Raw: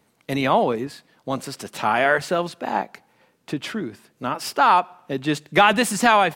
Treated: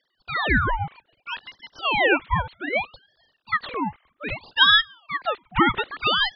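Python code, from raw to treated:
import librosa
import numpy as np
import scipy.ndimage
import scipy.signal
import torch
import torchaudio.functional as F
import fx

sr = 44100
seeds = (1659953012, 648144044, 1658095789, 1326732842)

y = fx.sine_speech(x, sr)
y = fx.rider(y, sr, range_db=5, speed_s=2.0)
y = fx.ring_lfo(y, sr, carrier_hz=1500.0, swing_pct=70, hz=0.63)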